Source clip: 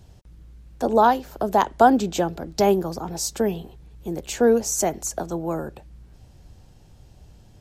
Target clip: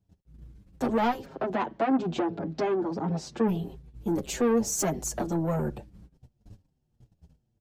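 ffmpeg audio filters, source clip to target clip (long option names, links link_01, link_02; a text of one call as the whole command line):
ffmpeg -i in.wav -filter_complex "[0:a]agate=range=-27dB:threshold=-44dB:ratio=16:detection=peak,equalizer=frequency=190:width_type=o:width=2.9:gain=9,alimiter=limit=-8dB:level=0:latency=1:release=289,asoftclip=type=tanh:threshold=-18dB,asplit=3[link_01][link_02][link_03];[link_01]afade=type=out:start_time=1.24:duration=0.02[link_04];[link_02]highpass=140,lowpass=3100,afade=type=in:start_time=1.24:duration=0.02,afade=type=out:start_time=3.47:duration=0.02[link_05];[link_03]afade=type=in:start_time=3.47:duration=0.02[link_06];[link_04][link_05][link_06]amix=inputs=3:normalize=0,asplit=2[link_07][link_08];[link_08]adelay=6.7,afreqshift=-1.7[link_09];[link_07][link_09]amix=inputs=2:normalize=1" out.wav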